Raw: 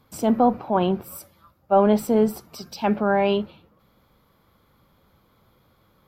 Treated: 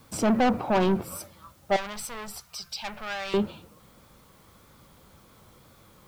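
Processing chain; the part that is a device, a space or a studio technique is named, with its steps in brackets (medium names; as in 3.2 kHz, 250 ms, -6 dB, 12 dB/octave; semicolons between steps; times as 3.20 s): compact cassette (saturation -23.5 dBFS, distortion -6 dB; low-pass 10 kHz 12 dB/octave; wow and flutter; white noise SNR 36 dB); 1.76–3.34 s: amplifier tone stack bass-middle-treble 10-0-10; trim +5 dB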